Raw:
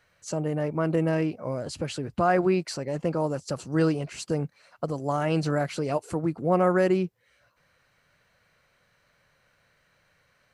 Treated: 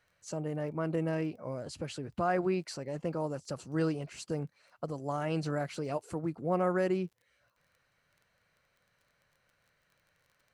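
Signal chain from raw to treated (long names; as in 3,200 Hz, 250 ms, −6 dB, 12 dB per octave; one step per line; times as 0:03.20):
surface crackle 18 per second −45 dBFS
level −7.5 dB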